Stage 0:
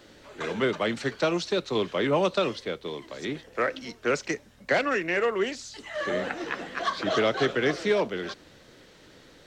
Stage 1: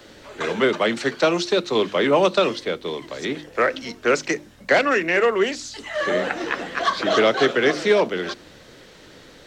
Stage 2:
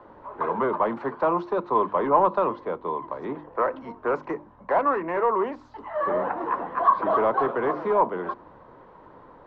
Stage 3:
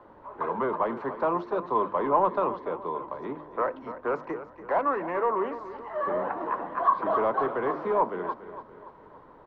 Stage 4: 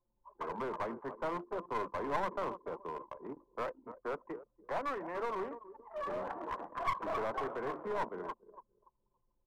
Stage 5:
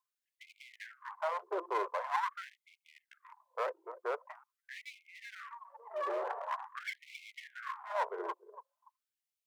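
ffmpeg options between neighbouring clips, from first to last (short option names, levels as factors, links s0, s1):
-filter_complex "[0:a]bandreject=f=50:t=h:w=6,bandreject=f=100:t=h:w=6,bandreject=f=150:t=h:w=6,bandreject=f=200:t=h:w=6,bandreject=f=250:t=h:w=6,bandreject=f=300:t=h:w=6,bandreject=f=350:t=h:w=6,acrossover=split=170|1400[s0][s1][s2];[s0]acompressor=threshold=0.00251:ratio=6[s3];[s3][s1][s2]amix=inputs=3:normalize=0,volume=2.24"
-af "asoftclip=type=tanh:threshold=0.178,lowpass=f=1000:t=q:w=7.2,volume=0.562"
-af "aecho=1:1:287|574|861|1148|1435:0.224|0.105|0.0495|0.0232|0.0109,volume=0.668"
-af "anlmdn=6.31,aeval=exprs='clip(val(0),-1,0.0447)':c=same,volume=0.355"
-af "afftfilt=real='re*gte(b*sr/1024,320*pow(2100/320,0.5+0.5*sin(2*PI*0.45*pts/sr)))':imag='im*gte(b*sr/1024,320*pow(2100/320,0.5+0.5*sin(2*PI*0.45*pts/sr)))':win_size=1024:overlap=0.75,volume=1.41"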